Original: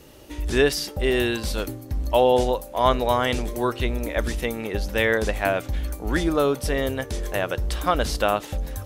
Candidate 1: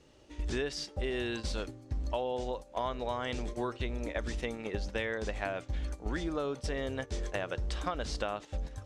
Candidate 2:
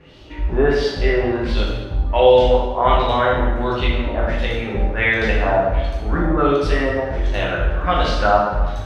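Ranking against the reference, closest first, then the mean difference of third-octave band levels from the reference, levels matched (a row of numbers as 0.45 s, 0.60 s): 1, 2; 4.0 dB, 9.0 dB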